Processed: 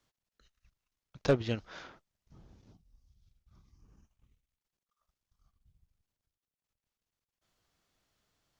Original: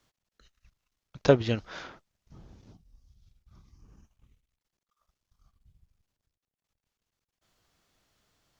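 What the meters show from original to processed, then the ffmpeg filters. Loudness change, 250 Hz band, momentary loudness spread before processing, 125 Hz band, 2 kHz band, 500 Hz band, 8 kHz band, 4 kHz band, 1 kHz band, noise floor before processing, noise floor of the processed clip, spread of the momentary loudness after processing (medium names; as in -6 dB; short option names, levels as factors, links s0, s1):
-5.0 dB, -5.5 dB, 20 LU, -5.5 dB, -5.5 dB, -7.0 dB, no reading, -5.5 dB, -7.0 dB, under -85 dBFS, under -85 dBFS, 20 LU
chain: -af "aeval=exprs='0.531*(cos(1*acos(clip(val(0)/0.531,-1,1)))-cos(1*PI/2))+0.0376*(cos(7*acos(clip(val(0)/0.531,-1,1)))-cos(7*PI/2))':c=same,asoftclip=type=tanh:threshold=0.119"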